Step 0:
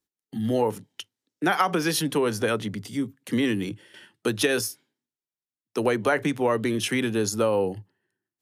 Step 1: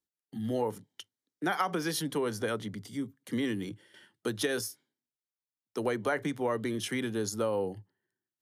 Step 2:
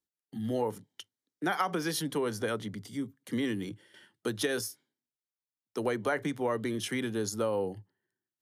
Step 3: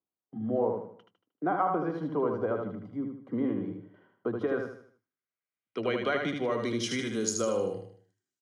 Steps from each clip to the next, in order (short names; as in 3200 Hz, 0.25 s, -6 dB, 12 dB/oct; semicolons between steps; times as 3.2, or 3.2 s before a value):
notch 2600 Hz, Q 6.9; gain -7.5 dB
nothing audible
notch comb 880 Hz; low-pass sweep 900 Hz -> 7100 Hz, 4.24–7.13; on a send: feedback echo 77 ms, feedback 39%, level -4.5 dB